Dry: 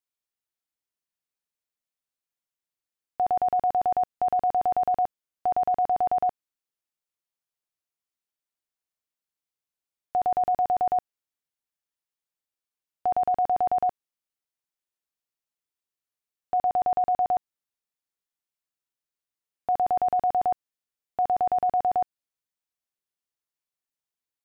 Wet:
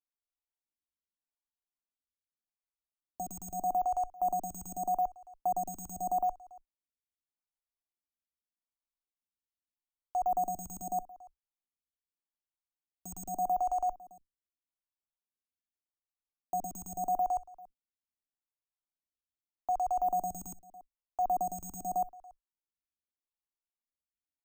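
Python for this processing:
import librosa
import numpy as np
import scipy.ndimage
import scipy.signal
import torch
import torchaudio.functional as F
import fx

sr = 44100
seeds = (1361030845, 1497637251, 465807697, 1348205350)

y = fx.octave_divider(x, sr, octaves=2, level_db=-1.0)
y = fx.low_shelf(y, sr, hz=180.0, db=7.0)
y = np.repeat(scipy.signal.resample_poly(y, 1, 6), 6)[:len(y)]
y = fx.bass_treble(y, sr, bass_db=0, treble_db=-3)
y = fx.fixed_phaser(y, sr, hz=480.0, stages=6)
y = y + 10.0 ** (-21.5 / 20.0) * np.pad(y, (int(283 * sr / 1000.0), 0))[:len(y)]
y = fx.stagger_phaser(y, sr, hz=0.82)
y = F.gain(torch.from_numpy(y), -5.0).numpy()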